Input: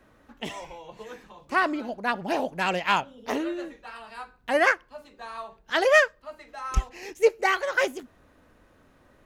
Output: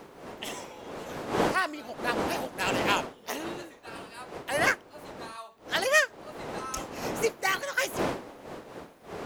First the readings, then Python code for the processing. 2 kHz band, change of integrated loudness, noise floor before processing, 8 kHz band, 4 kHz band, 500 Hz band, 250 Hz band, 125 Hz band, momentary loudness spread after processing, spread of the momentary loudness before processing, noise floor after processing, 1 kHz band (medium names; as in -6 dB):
-3.0 dB, -4.0 dB, -60 dBFS, +5.5 dB, +0.5 dB, -5.0 dB, -2.0 dB, -1.5 dB, 18 LU, 21 LU, -53 dBFS, -3.5 dB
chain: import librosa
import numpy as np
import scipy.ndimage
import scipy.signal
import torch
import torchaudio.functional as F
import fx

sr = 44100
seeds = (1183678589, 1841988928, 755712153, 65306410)

y = fx.dmg_wind(x, sr, seeds[0], corner_hz=480.0, level_db=-26.0)
y = fx.riaa(y, sr, side='recording')
y = y * librosa.db_to_amplitude(-5.5)